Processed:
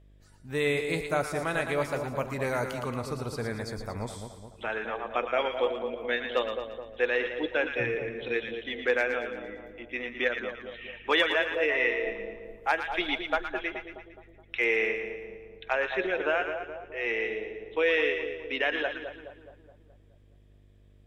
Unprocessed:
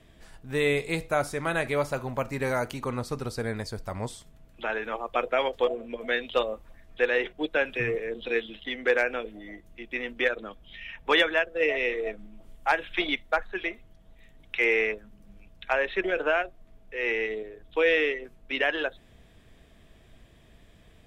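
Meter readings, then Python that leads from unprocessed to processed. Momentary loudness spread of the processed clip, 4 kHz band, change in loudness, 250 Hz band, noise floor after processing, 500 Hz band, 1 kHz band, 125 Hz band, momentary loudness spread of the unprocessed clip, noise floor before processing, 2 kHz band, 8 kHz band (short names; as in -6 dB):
13 LU, -1.5 dB, -1.5 dB, -1.5 dB, -57 dBFS, -1.5 dB, -1.5 dB, -1.5 dB, 12 LU, -56 dBFS, -1.0 dB, n/a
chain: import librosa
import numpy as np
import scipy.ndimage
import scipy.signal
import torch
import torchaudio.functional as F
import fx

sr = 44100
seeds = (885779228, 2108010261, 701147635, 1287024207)

p1 = fx.noise_reduce_blind(x, sr, reduce_db=12)
p2 = fx.dmg_buzz(p1, sr, base_hz=50.0, harmonics=12, level_db=-54.0, tilt_db=-8, odd_only=False)
p3 = fx.spec_box(p2, sr, start_s=11.68, length_s=0.24, low_hz=850.0, high_hz=2100.0, gain_db=7)
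p4 = p3 + fx.echo_split(p3, sr, split_hz=1000.0, low_ms=211, high_ms=114, feedback_pct=52, wet_db=-7.0, dry=0)
y = F.gain(torch.from_numpy(p4), -2.5).numpy()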